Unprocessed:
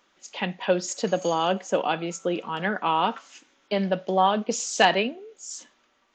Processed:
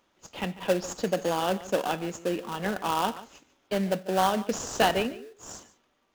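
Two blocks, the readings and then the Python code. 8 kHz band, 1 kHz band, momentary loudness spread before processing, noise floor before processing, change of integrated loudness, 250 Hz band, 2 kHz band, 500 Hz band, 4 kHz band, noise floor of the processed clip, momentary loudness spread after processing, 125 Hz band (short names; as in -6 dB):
-4.5 dB, -4.0 dB, 17 LU, -66 dBFS, -3.5 dB, -2.0 dB, -5.0 dB, -2.5 dB, -4.5 dB, -71 dBFS, 18 LU, -1.5 dB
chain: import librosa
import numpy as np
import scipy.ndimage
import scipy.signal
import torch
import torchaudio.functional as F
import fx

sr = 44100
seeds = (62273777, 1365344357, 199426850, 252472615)

p1 = fx.sample_hold(x, sr, seeds[0], rate_hz=2200.0, jitter_pct=20)
p2 = x + (p1 * 10.0 ** (-3.0 / 20.0))
p3 = p2 + 10.0 ** (-17.0 / 20.0) * np.pad(p2, (int(145 * sr / 1000.0), 0))[:len(p2)]
y = p3 * 10.0 ** (-6.5 / 20.0)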